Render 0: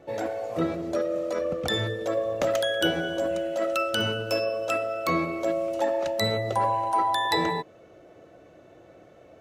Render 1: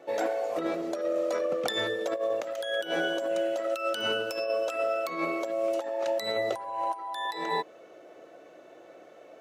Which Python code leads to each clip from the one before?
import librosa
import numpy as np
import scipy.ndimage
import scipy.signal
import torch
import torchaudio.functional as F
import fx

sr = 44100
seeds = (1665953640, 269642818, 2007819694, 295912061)

y = scipy.signal.sosfilt(scipy.signal.butter(2, 350.0, 'highpass', fs=sr, output='sos'), x)
y = fx.over_compress(y, sr, threshold_db=-29.0, ratio=-0.5)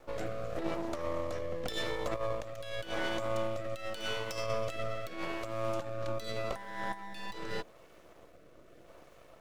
y = fx.dmg_noise_colour(x, sr, seeds[0], colour='pink', level_db=-64.0)
y = np.maximum(y, 0.0)
y = fx.rotary(y, sr, hz=0.85)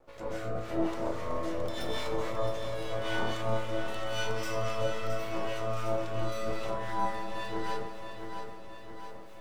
y = fx.rev_plate(x, sr, seeds[1], rt60_s=0.82, hf_ratio=0.75, predelay_ms=115, drr_db=-8.5)
y = fx.harmonic_tremolo(y, sr, hz=3.7, depth_pct=70, crossover_hz=1300.0)
y = fx.echo_feedback(y, sr, ms=668, feedback_pct=58, wet_db=-8)
y = F.gain(torch.from_numpy(y), -4.0).numpy()